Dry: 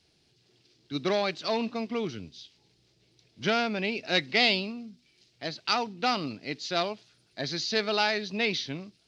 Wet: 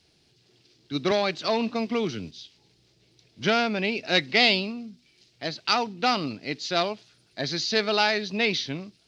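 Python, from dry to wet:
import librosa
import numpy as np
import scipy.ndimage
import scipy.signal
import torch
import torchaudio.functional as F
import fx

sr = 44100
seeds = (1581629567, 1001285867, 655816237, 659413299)

y = fx.band_squash(x, sr, depth_pct=40, at=(1.11, 2.31))
y = y * 10.0 ** (3.5 / 20.0)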